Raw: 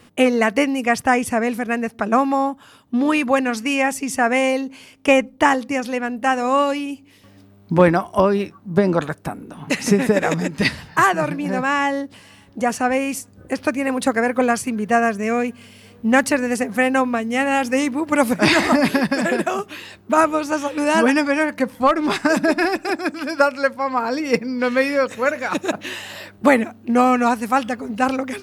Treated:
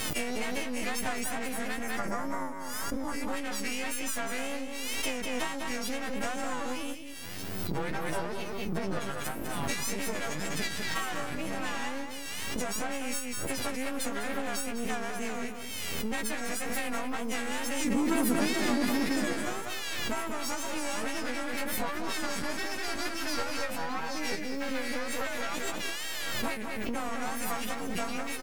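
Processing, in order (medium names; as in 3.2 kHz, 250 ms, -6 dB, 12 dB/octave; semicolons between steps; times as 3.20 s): partials quantised in pitch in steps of 3 st; half-wave rectifier; compression 6:1, threshold -31 dBFS, peak gain reduction 21 dB; 1.83–3.22 s: time-frequency box 2.3–4.8 kHz -10 dB; 17.85–19.33 s: peaking EQ 290 Hz +11.5 dB 1.5 oct; 24.39–24.98 s: modulation noise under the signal 25 dB; wow and flutter 130 cents; echo from a far wall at 34 m, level -7 dB; swell ahead of each attack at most 21 dB/s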